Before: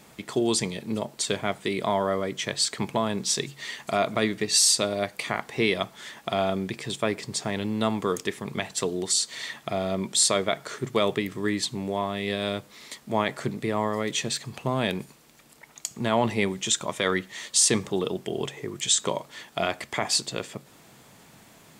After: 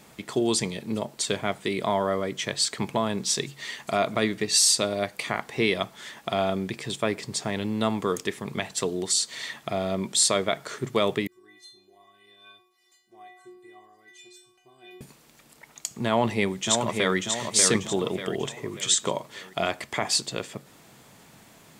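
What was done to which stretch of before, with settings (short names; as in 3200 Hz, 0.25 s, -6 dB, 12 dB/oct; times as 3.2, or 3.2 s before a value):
11.27–15.01 metallic resonator 360 Hz, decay 0.83 s, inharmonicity 0.008
16.08–17.17 echo throw 0.59 s, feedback 45%, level -4.5 dB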